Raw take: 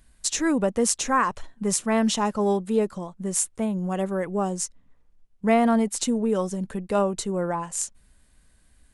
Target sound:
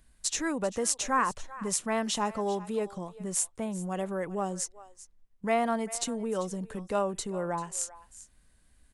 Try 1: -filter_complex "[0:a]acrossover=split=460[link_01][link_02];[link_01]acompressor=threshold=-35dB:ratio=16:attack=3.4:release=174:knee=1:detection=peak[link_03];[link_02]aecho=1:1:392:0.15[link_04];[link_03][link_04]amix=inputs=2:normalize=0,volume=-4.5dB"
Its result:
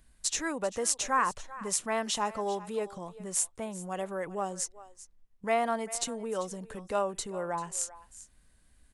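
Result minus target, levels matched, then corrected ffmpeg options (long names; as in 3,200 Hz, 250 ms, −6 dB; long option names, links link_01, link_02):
downward compressor: peak gain reduction +7 dB
-filter_complex "[0:a]acrossover=split=460[link_01][link_02];[link_01]acompressor=threshold=-27.5dB:ratio=16:attack=3.4:release=174:knee=1:detection=peak[link_03];[link_02]aecho=1:1:392:0.15[link_04];[link_03][link_04]amix=inputs=2:normalize=0,volume=-4.5dB"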